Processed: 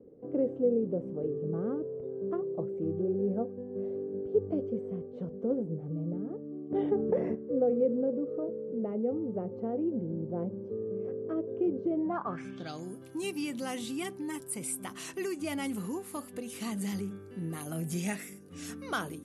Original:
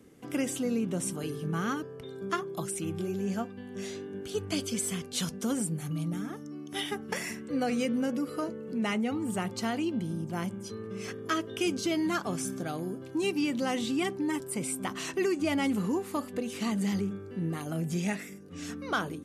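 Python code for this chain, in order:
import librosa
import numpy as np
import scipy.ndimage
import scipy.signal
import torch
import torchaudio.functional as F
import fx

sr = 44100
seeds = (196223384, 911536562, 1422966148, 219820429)

y = fx.rider(x, sr, range_db=10, speed_s=2.0)
y = fx.filter_sweep_lowpass(y, sr, from_hz=500.0, to_hz=11000.0, start_s=11.98, end_s=12.96, q=4.3)
y = fx.env_flatten(y, sr, amount_pct=50, at=(6.7, 7.34), fade=0.02)
y = y * 10.0 ** (-5.5 / 20.0)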